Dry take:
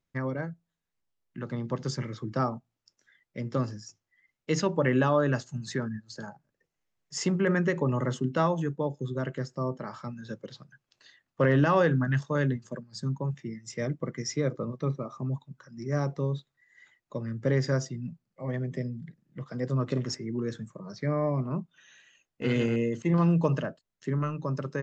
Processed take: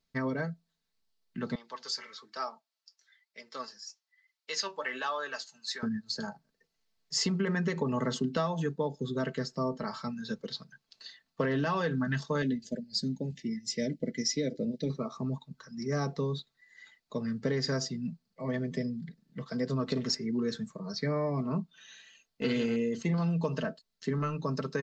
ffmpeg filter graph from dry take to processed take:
ffmpeg -i in.wav -filter_complex "[0:a]asettb=1/sr,asplit=3[link_01][link_02][link_03];[link_01]atrim=end=1.554[link_04];[link_02]atrim=start=1.55:end=5.83,asetpts=PTS-STARTPTS,afade=type=in:duration=0.004:curve=qsin,afade=type=out:start_time=4.276:duration=0.004:curve=qsin,highpass=860,flanger=delay=4.8:depth=5.7:regen=59:speed=1.1:shape=sinusoidal[link_05];[link_03]atrim=start=5.826[link_06];[link_04][link_05]acrossfade=duration=0.004:curve1=hsin:curve2=qsin[link_07];[link_07][link_06]acrossfade=duration=0.004:curve1=qsin:curve2=hsin,asettb=1/sr,asplit=3[link_08][link_09][link_10];[link_08]atrim=end=12.424[link_11];[link_09]atrim=start=12.42:end=14.9,asetpts=PTS-STARTPTS,afade=type=in:duration=0.004:curve=qsin,afade=type=out:start_time=2.476:duration=0.004:curve=qsin,asuperstop=centerf=1100:order=4:qfactor=0.77,aecho=1:1:3.5:0.38,atrim=end_sample=109368[link_12];[link_10]atrim=start=14.896[link_13];[link_11][link_12]acrossfade=duration=0.004:curve1=hsin:curve2=qsin[link_14];[link_14][link_13]acrossfade=duration=0.004:curve1=qsin:curve2=hsin,equalizer=frequency=4400:width_type=o:width=0.61:gain=12,aecho=1:1:4.5:0.59,acompressor=threshold=-26dB:ratio=10" out.wav

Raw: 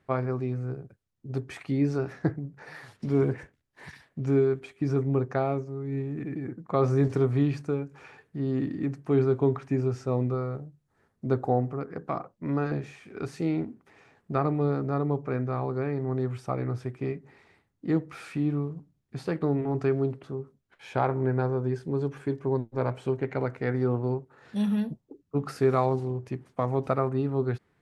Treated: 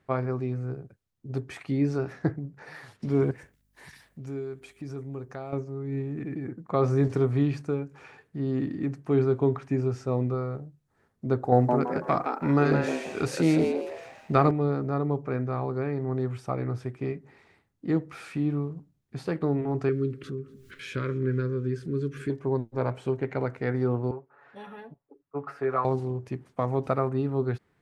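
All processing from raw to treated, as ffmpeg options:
ffmpeg -i in.wav -filter_complex "[0:a]asettb=1/sr,asplit=3[link_01][link_02][link_03];[link_01]atrim=end=3.314[link_04];[link_02]atrim=start=3.31:end=5.53,asetpts=PTS-STARTPTS,afade=type=in:duration=0.004:curve=qsin,afade=type=out:start_time=2.216:duration=0.004:curve=qsin,aemphasis=mode=production:type=50kf,acompressor=threshold=-53dB:ratio=1.5:attack=3.2:release=140:knee=1:detection=peak,aeval=exprs='val(0)+0.000316*(sin(2*PI*50*n/s)+sin(2*PI*2*50*n/s)/2+sin(2*PI*3*50*n/s)/3+sin(2*PI*4*50*n/s)/4+sin(2*PI*5*50*n/s)/5)':channel_layout=same[link_05];[link_03]atrim=start=5.526[link_06];[link_04][link_05]acrossfade=duration=0.004:curve1=hsin:curve2=qsin[link_07];[link_07][link_06]acrossfade=duration=0.004:curve1=qsin:curve2=hsin,asettb=1/sr,asplit=3[link_08][link_09][link_10];[link_08]atrim=end=11.524[link_11];[link_09]atrim=start=11.52:end=14.51,asetpts=PTS-STARTPTS,afade=type=in:duration=0.004:curve=qsin,afade=type=out:start_time=2.986:duration=0.004:curve=qsin,highshelf=frequency=2400:gain=7.5,acontrast=28,asplit=5[link_12][link_13][link_14][link_15][link_16];[link_13]adelay=165,afreqshift=120,volume=-5.5dB[link_17];[link_14]adelay=330,afreqshift=240,volume=-15.4dB[link_18];[link_15]adelay=495,afreqshift=360,volume=-25.3dB[link_19];[link_16]adelay=660,afreqshift=480,volume=-35.2dB[link_20];[link_12][link_17][link_18][link_19][link_20]amix=inputs=5:normalize=0,atrim=end_sample=131859[link_21];[link_10]atrim=start=14.506[link_22];[link_11][link_21]acrossfade=duration=0.004:curve1=hsin:curve2=qsin[link_23];[link_23][link_22]acrossfade=duration=0.004:curve1=qsin:curve2=hsin,asettb=1/sr,asplit=3[link_24][link_25][link_26];[link_24]atrim=end=19.894[link_27];[link_25]atrim=start=19.89:end=22.3,asetpts=PTS-STARTPTS,afade=type=in:duration=0.004:curve=qsin,afade=type=out:start_time=2.406:duration=0.004:curve=qsin,asuperstop=centerf=780:order=4:qfactor=0.85,acompressor=mode=upward:threshold=-31dB:ratio=2.5:attack=3.2:release=140:knee=2.83:detection=peak,aecho=1:1:246|492|738:0.0631|0.0341|0.0184,atrim=end_sample=106281[link_28];[link_26]atrim=start=22.296[link_29];[link_27][link_28]acrossfade=duration=0.004:curve1=hsin:curve2=qsin[link_30];[link_30][link_29]acrossfade=duration=0.004:curve1=qsin:curve2=hsin,asettb=1/sr,asplit=3[link_31][link_32][link_33];[link_31]atrim=end=24.114[link_34];[link_32]atrim=start=24.11:end=25.85,asetpts=PTS-STARTPTS,afade=type=in:duration=0.004:curve=qsin,afade=type=out:start_time=1.736:duration=0.004:curve=qsin,acrossover=split=500 2200:gain=0.158 1 0.0794[link_35][link_36][link_37];[link_35][link_36][link_37]amix=inputs=3:normalize=0,aecho=1:1:7.1:0.73,atrim=end_sample=76734[link_38];[link_33]atrim=start=25.846[link_39];[link_34][link_38]acrossfade=duration=0.004:curve1=hsin:curve2=qsin[link_40];[link_40][link_39]acrossfade=duration=0.004:curve1=qsin:curve2=hsin" out.wav

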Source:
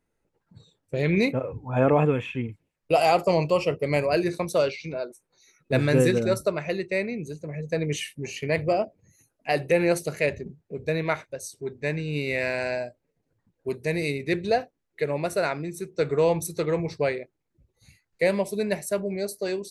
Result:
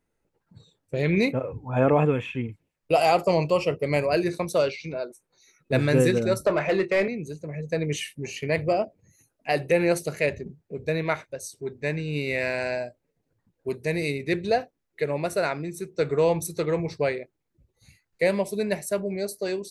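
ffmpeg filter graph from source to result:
ffmpeg -i in.wav -filter_complex "[0:a]asettb=1/sr,asplit=3[link_01][link_02][link_03];[link_01]atrim=end=6.454[link_04];[link_02]atrim=start=6.45:end=7.08,asetpts=PTS-STARTPTS,afade=type=in:duration=0.004:curve=qsin,afade=type=out:start_time=0.626:duration=0.004:curve=qsin,highpass=frequency=98:width=0.5412,highpass=frequency=98:width=1.3066,asplit=2[link_05][link_06];[link_06]highpass=frequency=720:poles=1,volume=20dB,asoftclip=type=tanh:threshold=-12dB[link_07];[link_05][link_07]amix=inputs=2:normalize=0,lowpass=frequency=1300:poles=1,volume=-6dB,asplit=2[link_08][link_09];[link_09]adelay=26,volume=-13dB[link_10];[link_08][link_10]amix=inputs=2:normalize=0,atrim=end_sample=27783[link_11];[link_03]atrim=start=7.076[link_12];[link_04][link_11]acrossfade=duration=0.004:curve1=hsin:curve2=qsin[link_13];[link_13][link_12]acrossfade=duration=0.004:curve1=qsin:curve2=hsin" out.wav

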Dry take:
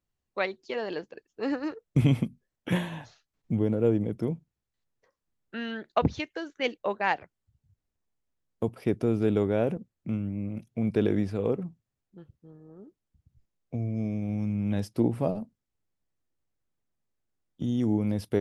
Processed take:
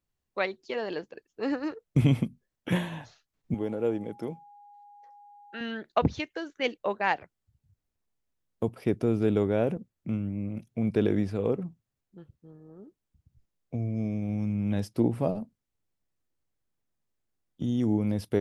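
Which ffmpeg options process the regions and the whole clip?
ffmpeg -i in.wav -filter_complex "[0:a]asettb=1/sr,asplit=3[link_01][link_02][link_03];[link_01]atrim=end=3.544[link_04];[link_02]atrim=start=3.54:end=5.61,asetpts=PTS-STARTPTS,afade=type=in:duration=0.004:curve=qsin,afade=type=out:start_time=2.066:duration=0.004:curve=qsin,highpass=frequency=460:poles=1,aeval=exprs='val(0)+0.00316*sin(2*PI*820*n/s)':channel_layout=same[link_05];[link_03]atrim=start=5.606[link_06];[link_04][link_05]acrossfade=duration=0.004:curve1=hsin:curve2=qsin[link_07];[link_07][link_06]acrossfade=duration=0.004:curve1=qsin:curve2=hsin" out.wav

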